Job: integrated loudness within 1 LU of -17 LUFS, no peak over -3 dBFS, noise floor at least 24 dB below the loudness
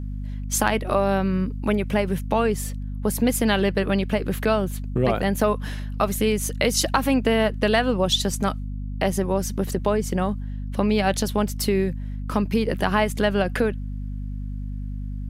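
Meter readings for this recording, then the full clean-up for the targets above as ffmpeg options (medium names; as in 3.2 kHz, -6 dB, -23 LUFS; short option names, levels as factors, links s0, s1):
hum 50 Hz; highest harmonic 250 Hz; hum level -28 dBFS; loudness -23.5 LUFS; peak level -5.0 dBFS; loudness target -17.0 LUFS
-> -af "bandreject=f=50:t=h:w=6,bandreject=f=100:t=h:w=6,bandreject=f=150:t=h:w=6,bandreject=f=200:t=h:w=6,bandreject=f=250:t=h:w=6"
-af "volume=2.11,alimiter=limit=0.708:level=0:latency=1"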